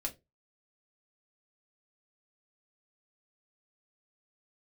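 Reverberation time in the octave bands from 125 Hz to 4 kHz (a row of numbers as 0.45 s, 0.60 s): 0.35 s, 0.25 s, 0.25 s, 0.20 s, 0.15 s, 0.15 s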